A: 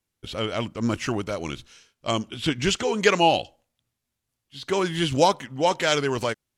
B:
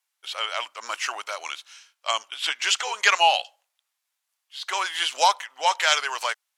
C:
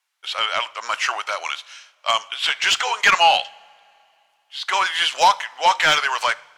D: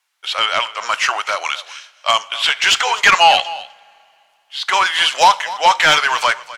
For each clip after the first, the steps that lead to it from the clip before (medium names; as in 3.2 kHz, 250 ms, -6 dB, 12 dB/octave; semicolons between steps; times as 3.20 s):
high-pass 800 Hz 24 dB/octave; trim +4 dB
overdrive pedal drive 16 dB, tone 3.1 kHz, clips at -1 dBFS; two-slope reverb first 0.54 s, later 2.8 s, from -18 dB, DRR 17 dB; trim -1.5 dB
delay 253 ms -18 dB; in parallel at -3.5 dB: saturation -12.5 dBFS, distortion -14 dB; on the sum: trim +1 dB